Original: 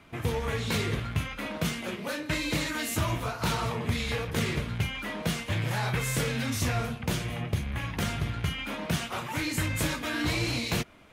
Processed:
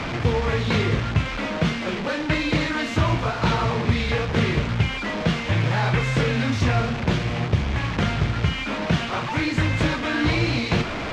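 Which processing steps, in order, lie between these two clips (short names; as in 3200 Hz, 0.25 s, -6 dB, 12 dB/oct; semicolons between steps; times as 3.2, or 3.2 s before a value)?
delta modulation 64 kbps, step -29.5 dBFS; air absorption 190 m; gain +8.5 dB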